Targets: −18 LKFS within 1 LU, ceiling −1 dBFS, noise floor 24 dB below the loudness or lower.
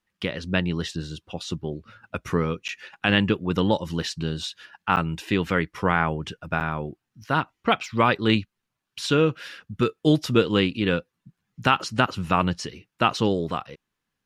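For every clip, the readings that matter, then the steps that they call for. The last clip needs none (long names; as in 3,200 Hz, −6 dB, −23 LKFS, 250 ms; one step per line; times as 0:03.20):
number of dropouts 3; longest dropout 8.5 ms; integrated loudness −25.0 LKFS; sample peak −4.5 dBFS; target loudness −18.0 LKFS
→ repair the gap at 0:02.68/0:04.96/0:06.60, 8.5 ms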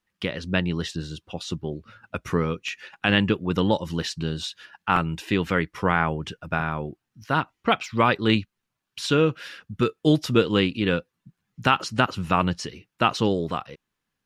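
number of dropouts 0; integrated loudness −25.0 LKFS; sample peak −4.5 dBFS; target loudness −18.0 LKFS
→ level +7 dB
brickwall limiter −1 dBFS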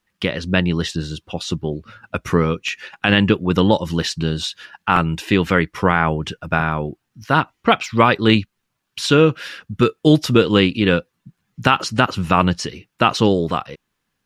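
integrated loudness −18.5 LKFS; sample peak −1.0 dBFS; background noise floor −75 dBFS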